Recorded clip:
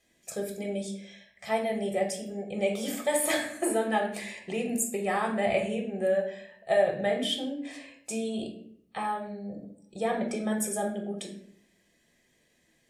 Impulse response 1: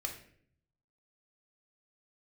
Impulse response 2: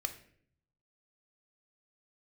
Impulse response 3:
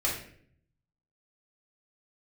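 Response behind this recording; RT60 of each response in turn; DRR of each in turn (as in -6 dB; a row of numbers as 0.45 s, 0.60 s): 1; 0.60 s, 0.60 s, 0.60 s; 2.0 dB, 7.0 dB, -5.0 dB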